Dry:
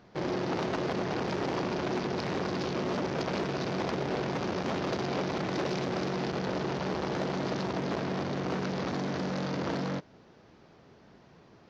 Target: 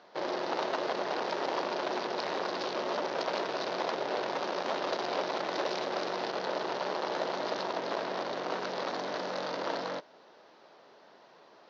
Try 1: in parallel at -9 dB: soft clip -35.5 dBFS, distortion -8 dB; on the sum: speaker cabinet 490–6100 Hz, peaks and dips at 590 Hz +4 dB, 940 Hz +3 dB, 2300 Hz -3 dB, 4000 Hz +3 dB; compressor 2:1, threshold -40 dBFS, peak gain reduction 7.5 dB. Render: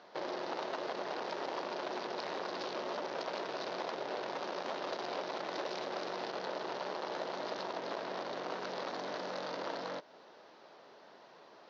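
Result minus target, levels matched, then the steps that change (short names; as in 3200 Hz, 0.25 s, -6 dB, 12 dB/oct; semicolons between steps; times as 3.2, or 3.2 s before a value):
compressor: peak gain reduction +7.5 dB
remove: compressor 2:1, threshold -40 dBFS, peak gain reduction 7.5 dB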